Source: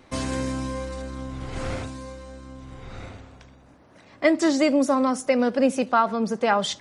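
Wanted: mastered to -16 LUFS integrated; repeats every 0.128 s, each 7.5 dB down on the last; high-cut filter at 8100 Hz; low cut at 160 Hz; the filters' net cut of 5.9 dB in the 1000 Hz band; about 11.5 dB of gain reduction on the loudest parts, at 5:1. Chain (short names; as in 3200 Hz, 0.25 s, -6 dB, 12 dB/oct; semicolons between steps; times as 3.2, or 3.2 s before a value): HPF 160 Hz; LPF 8100 Hz; bell 1000 Hz -8 dB; compressor 5:1, threshold -30 dBFS; feedback echo 0.128 s, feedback 42%, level -7.5 dB; gain +18.5 dB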